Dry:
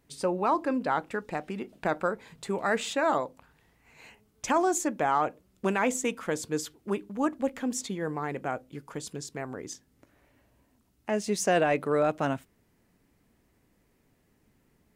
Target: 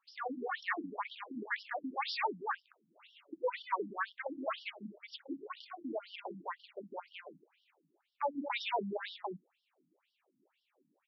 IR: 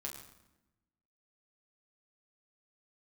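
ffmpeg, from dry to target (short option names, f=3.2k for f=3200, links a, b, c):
-af "asubboost=boost=7.5:cutoff=56,aeval=exprs='0.251*sin(PI/2*1.41*val(0)/0.251)':c=same,aecho=1:1:104|274|287:0.126|0.668|0.141,asetrate=59535,aresample=44100,afftfilt=real='re*between(b*sr/1024,210*pow(4100/210,0.5+0.5*sin(2*PI*2*pts/sr))/1.41,210*pow(4100/210,0.5+0.5*sin(2*PI*2*pts/sr))*1.41)':imag='im*between(b*sr/1024,210*pow(4100/210,0.5+0.5*sin(2*PI*2*pts/sr))/1.41,210*pow(4100/210,0.5+0.5*sin(2*PI*2*pts/sr))*1.41)':win_size=1024:overlap=0.75,volume=-8dB"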